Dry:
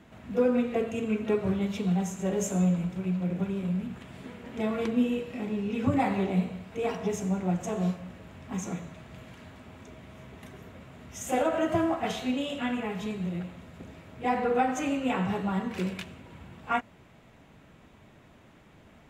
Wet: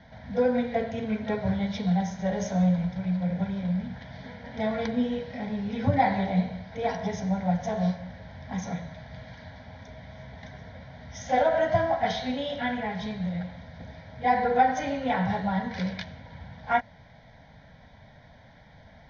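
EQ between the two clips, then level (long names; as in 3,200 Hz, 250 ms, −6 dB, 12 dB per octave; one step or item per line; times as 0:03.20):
Butterworth low-pass 6,300 Hz 96 dB per octave
parametric band 210 Hz −2 dB
phaser with its sweep stopped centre 1,800 Hz, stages 8
+6.5 dB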